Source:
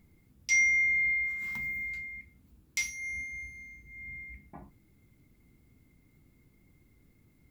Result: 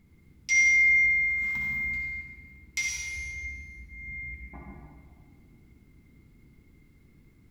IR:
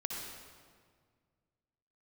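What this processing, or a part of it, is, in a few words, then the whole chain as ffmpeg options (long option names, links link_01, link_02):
stairwell: -filter_complex "[0:a]equalizer=frequency=630:width=1.5:gain=-4[link_01];[1:a]atrim=start_sample=2205[link_02];[link_01][link_02]afir=irnorm=-1:irlink=0,asettb=1/sr,asplit=3[link_03][link_04][link_05];[link_03]atrim=end=2.884[link_06];[link_04]atrim=start=2.88:end=3.45,asetpts=PTS-STARTPTS,afade=type=in:duration=0.004:curve=qsin,afade=type=out:start_time=0.566:duration=0.004:curve=qsin,aecho=1:1:2.1:0.55,atrim=end_sample=25137[link_07];[link_05]atrim=start=3.446[link_08];[link_06][link_07]acrossfade=duration=0.004:curve1=hsin:curve2=qsin[link_09];[link_09][link_08]acrossfade=duration=0.004:curve1=qsin:curve2=hsin,highshelf=frequency=8200:gain=-8.5,volume=4dB"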